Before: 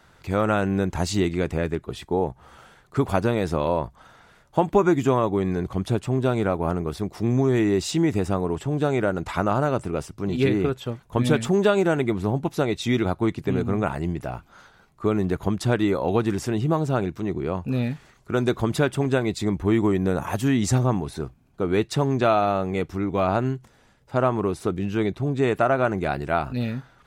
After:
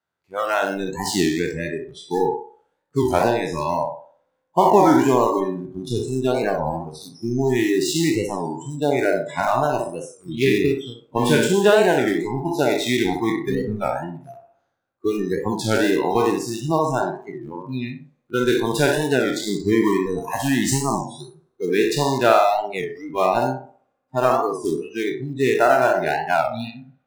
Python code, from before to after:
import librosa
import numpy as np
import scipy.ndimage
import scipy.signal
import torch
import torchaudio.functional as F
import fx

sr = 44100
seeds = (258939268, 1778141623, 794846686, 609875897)

p1 = fx.spec_trails(x, sr, decay_s=0.94)
p2 = scipy.signal.sosfilt(scipy.signal.butter(4, 61.0, 'highpass', fs=sr, output='sos'), p1)
p3 = fx.low_shelf(p2, sr, hz=160.0, db=-8.5)
p4 = np.where(np.abs(p3) >= 10.0 ** (-20.0 / 20.0), p3, 0.0)
p5 = p3 + (p4 * librosa.db_to_amplitude(-4.0))
p6 = fx.rev_spring(p5, sr, rt60_s=2.7, pass_ms=(58,), chirp_ms=50, drr_db=19.0)
p7 = fx.noise_reduce_blind(p6, sr, reduce_db=29)
p8 = p7 + fx.echo_banded(p7, sr, ms=62, feedback_pct=41, hz=620.0, wet_db=-3.0, dry=0)
p9 = fx.record_warp(p8, sr, rpm=33.33, depth_cents=160.0)
y = p9 * librosa.db_to_amplitude(-1.0)